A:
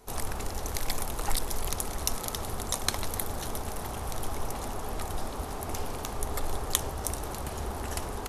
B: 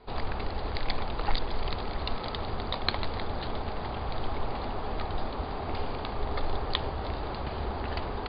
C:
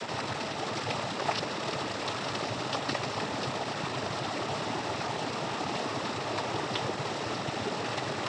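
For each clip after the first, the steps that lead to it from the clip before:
Chebyshev low-pass 4800 Hz, order 10; gain +2.5 dB
delta modulation 32 kbps, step -30.5 dBFS; noise vocoder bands 12; gain +2.5 dB

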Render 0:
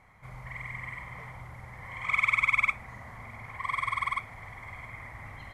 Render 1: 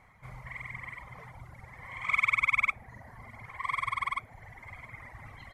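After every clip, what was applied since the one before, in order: reverb removal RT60 1.5 s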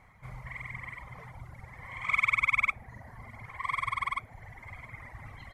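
low shelf 170 Hz +3.5 dB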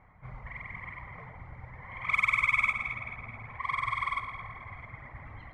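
echo with dull and thin repeats by turns 0.108 s, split 1500 Hz, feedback 74%, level -6 dB; low-pass opened by the level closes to 1800 Hz, open at -22.5 dBFS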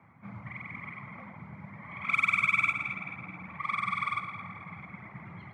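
frequency shift +73 Hz

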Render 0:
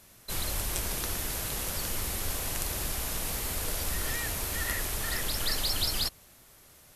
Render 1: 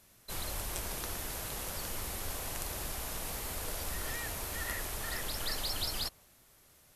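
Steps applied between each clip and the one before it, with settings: dynamic EQ 800 Hz, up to +4 dB, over -52 dBFS, Q 0.71; gain -6.5 dB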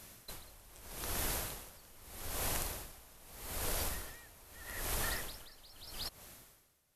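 in parallel at -7 dB: soft clip -26.5 dBFS, distortion -23 dB; on the sum: compressor 5:1, threshold -38 dBFS, peak gain reduction 9.5 dB; dB-linear tremolo 0.8 Hz, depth 23 dB; gain +6 dB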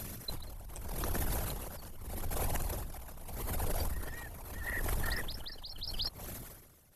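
formant sharpening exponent 2; compressor 2:1, threshold -50 dBFS, peak gain reduction 9.5 dB; gain +12.5 dB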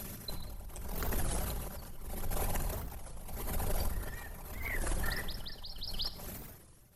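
shoebox room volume 3000 m³, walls furnished, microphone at 1.2 m; record warp 33 1/3 rpm, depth 250 cents; gain -1 dB

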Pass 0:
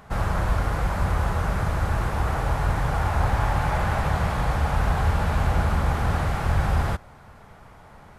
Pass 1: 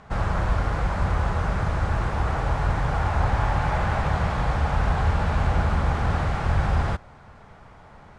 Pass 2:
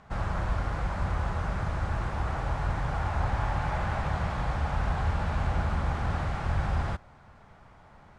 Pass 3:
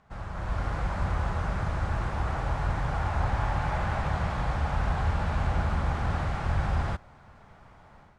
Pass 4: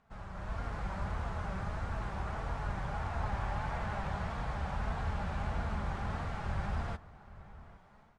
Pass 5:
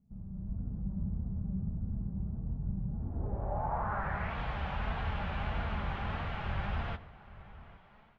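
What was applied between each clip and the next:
Bessel low-pass 6300 Hz, order 6
bell 450 Hz -3.5 dB 0.27 oct; gain -6 dB
AGC gain up to 9 dB; gain -8 dB
flange 1.6 Hz, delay 4.2 ms, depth 1.1 ms, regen +59%; outdoor echo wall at 140 m, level -17 dB; gain -3 dB
low-pass sweep 200 Hz -> 3000 Hz, 2.89–4.4; reverb RT60 0.45 s, pre-delay 69 ms, DRR 17.5 dB

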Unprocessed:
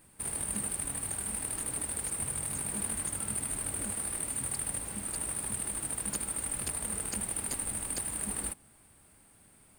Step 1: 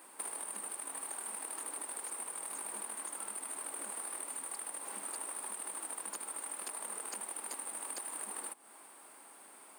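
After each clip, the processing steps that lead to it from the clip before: compressor 10:1, threshold -43 dBFS, peak gain reduction 14.5 dB; HPF 300 Hz 24 dB/oct; bell 990 Hz +8.5 dB 1 oct; gain +4.5 dB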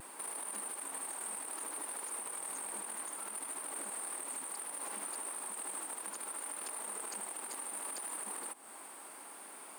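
limiter -37 dBFS, peak gain reduction 10 dB; vibrato 0.66 Hz 22 cents; gain +5.5 dB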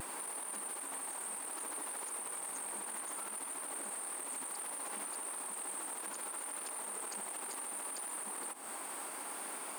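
limiter -40.5 dBFS, peak gain reduction 10 dB; gain +7.5 dB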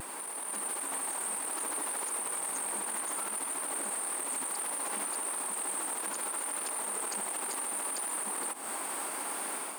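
AGC gain up to 5 dB; gain +2 dB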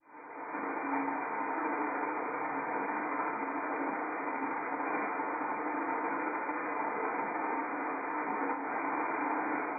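opening faded in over 0.58 s; brick-wall FIR low-pass 2500 Hz; FDN reverb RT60 0.48 s, low-frequency decay 1×, high-frequency decay 0.9×, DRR -7.5 dB; gain -1.5 dB

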